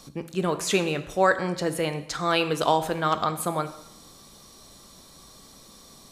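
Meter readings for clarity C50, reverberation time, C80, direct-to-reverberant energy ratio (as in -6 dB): 12.5 dB, 0.80 s, 14.5 dB, 9.0 dB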